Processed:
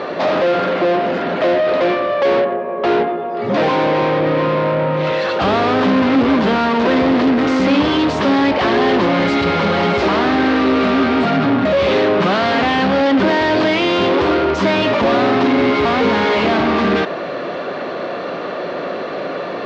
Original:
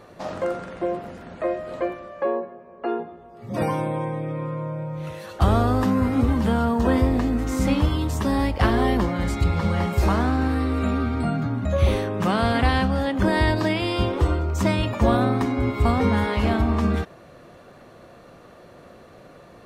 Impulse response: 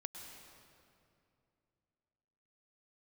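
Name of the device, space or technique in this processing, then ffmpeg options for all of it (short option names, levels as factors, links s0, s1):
overdrive pedal into a guitar cabinet: -filter_complex "[0:a]asplit=2[s0][s1];[s1]highpass=f=720:p=1,volume=56.2,asoftclip=type=tanh:threshold=0.398[s2];[s0][s2]amix=inputs=2:normalize=0,lowpass=f=6300:p=1,volume=0.501,highpass=110,equalizer=f=180:t=q:w=4:g=5,equalizer=f=280:t=q:w=4:g=6,equalizer=f=400:t=q:w=4:g=6,equalizer=f=590:t=q:w=4:g=4,lowpass=f=4500:w=0.5412,lowpass=f=4500:w=1.3066,volume=0.708"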